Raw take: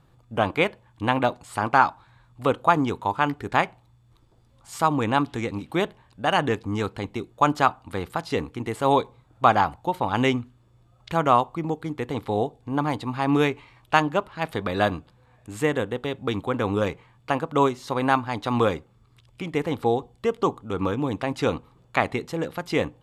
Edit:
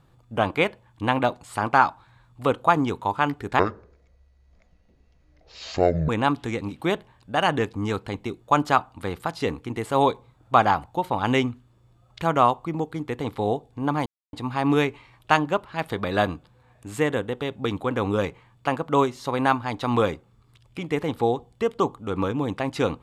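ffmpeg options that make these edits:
-filter_complex "[0:a]asplit=4[a][b][c][d];[a]atrim=end=3.594[e];[b]atrim=start=3.59:end=4.99,asetpts=PTS-STARTPTS,asetrate=24696,aresample=44100[f];[c]atrim=start=4.986:end=12.96,asetpts=PTS-STARTPTS,afade=t=out:st=7.97:d=0.004:c=hsin,apad=pad_dur=0.27[g];[d]atrim=start=12.96,asetpts=PTS-STARTPTS,afade=t=in:d=0.004:c=hsin[h];[e][f]acrossfade=d=0.004:c1=hsin:c2=hsin[i];[g][h]concat=n=2:v=0:a=1[j];[i][j]acrossfade=d=0.004:c1=hsin:c2=hsin"

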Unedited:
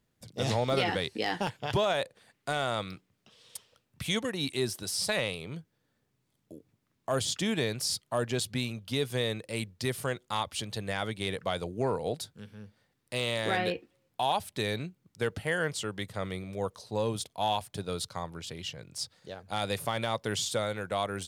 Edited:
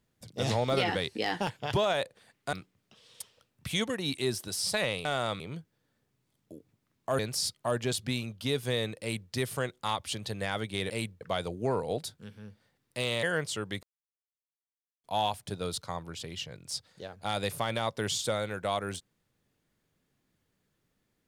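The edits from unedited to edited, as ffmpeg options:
-filter_complex "[0:a]asplit=10[a][b][c][d][e][f][g][h][i][j];[a]atrim=end=2.532[k];[b]atrim=start=2.878:end=5.402[l];[c]atrim=start=2.528:end=2.882[m];[d]atrim=start=5.398:end=7.192[n];[e]atrim=start=7.658:end=11.372[o];[f]atrim=start=9.478:end=9.792[p];[g]atrim=start=11.368:end=13.392[q];[h]atrim=start=15.498:end=16.1,asetpts=PTS-STARTPTS,afade=t=out:st=0.598:d=0.004:c=hsin[r];[i]atrim=start=16.1:end=17.31,asetpts=PTS-STARTPTS,volume=0[s];[j]atrim=start=17.31,asetpts=PTS-STARTPTS,afade=t=in:d=0.004:c=hsin[t];[k][l]acrossfade=d=0.004:c1=hsin:c2=hsin[u];[u][m]acrossfade=d=0.004:c1=hsin:c2=hsin[v];[v][n]acrossfade=d=0.004:c1=hsin:c2=hsin[w];[w][o]acrossfade=d=0.004:c1=hsin:c2=hsin[x];[x][p]acrossfade=d=0.004:c1=hsin:c2=hsin[y];[y][q]acrossfade=d=0.004:c1=hsin:c2=hsin[z];[r][s][t]concat=n=3:v=0:a=1[aa];[z][aa]acrossfade=d=0.004:c1=hsin:c2=hsin"

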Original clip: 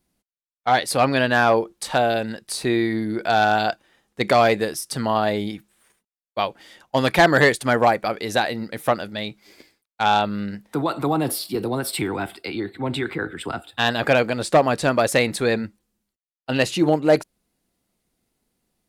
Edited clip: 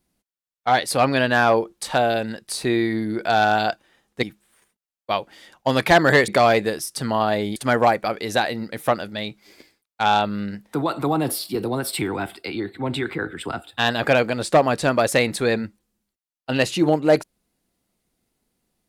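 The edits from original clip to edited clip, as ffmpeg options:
-filter_complex "[0:a]asplit=4[a][b][c][d];[a]atrim=end=4.232[e];[b]atrim=start=5.508:end=7.562[f];[c]atrim=start=4.228:end=5.512[g];[d]atrim=start=7.558[h];[e][f]acrossfade=d=0.004:c1=hsin:c2=hsin[i];[i][g]acrossfade=d=0.004:c1=hsin:c2=hsin[j];[j][h]acrossfade=d=0.004:c1=hsin:c2=hsin"

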